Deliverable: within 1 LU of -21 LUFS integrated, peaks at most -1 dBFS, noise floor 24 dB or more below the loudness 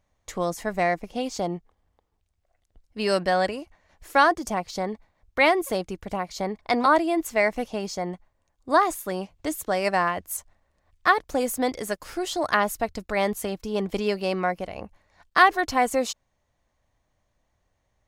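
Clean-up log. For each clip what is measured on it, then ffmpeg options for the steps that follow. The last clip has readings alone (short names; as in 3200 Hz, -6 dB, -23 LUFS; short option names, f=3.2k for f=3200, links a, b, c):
loudness -25.0 LUFS; peak -4.0 dBFS; loudness target -21.0 LUFS
-> -af "volume=4dB,alimiter=limit=-1dB:level=0:latency=1"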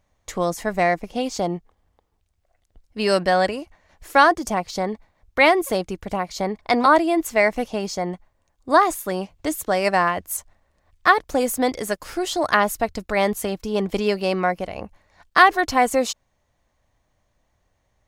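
loudness -21.0 LUFS; peak -1.0 dBFS; noise floor -70 dBFS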